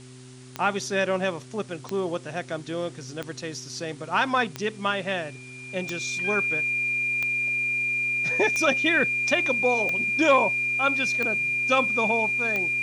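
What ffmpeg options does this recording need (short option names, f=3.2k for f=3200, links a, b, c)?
-af "adeclick=t=4,bandreject=f=127.2:t=h:w=4,bandreject=f=254.4:t=h:w=4,bandreject=f=381.6:t=h:w=4,bandreject=f=2.4k:w=30,afwtdn=0.0032"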